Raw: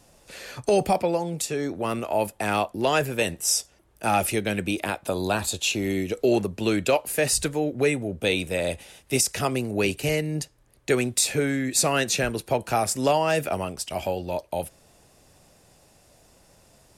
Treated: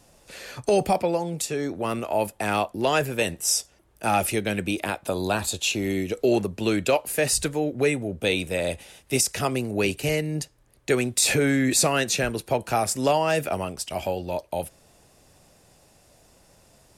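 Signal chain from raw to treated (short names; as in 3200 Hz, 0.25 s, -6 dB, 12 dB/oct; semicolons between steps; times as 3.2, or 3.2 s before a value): 11.22–11.87 fast leveller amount 70%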